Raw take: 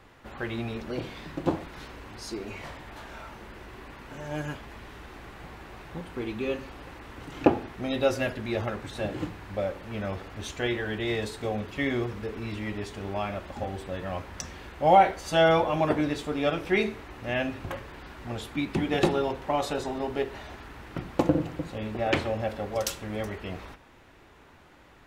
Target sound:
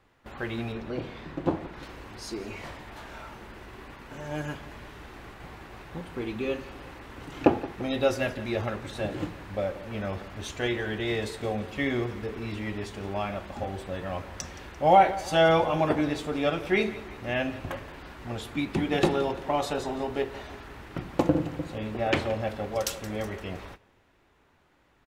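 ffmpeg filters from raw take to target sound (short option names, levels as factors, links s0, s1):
-filter_complex "[0:a]asettb=1/sr,asplit=3[s0][s1][s2];[s0]atrim=end=0.724[s3];[s1]atrim=start=0.72:end=1.83,asetpts=PTS-STARTPTS,afade=t=in:d=0.004:c=qsin,afade=t=out:st=1.106:d=0.004:c=qsin,highshelf=f=4400:g=-11[s4];[s2]atrim=start=1.826[s5];[s3][s4]acrossfade=d=0.004:c1=hsin:c2=qsin[s6];[s6][s5]acrossfade=d=0.004:c1=qsin:c2=hsin,aecho=1:1:172|344|516|688:0.141|0.072|0.0367|0.0187,agate=range=0.316:threshold=0.00562:ratio=16:detection=peak"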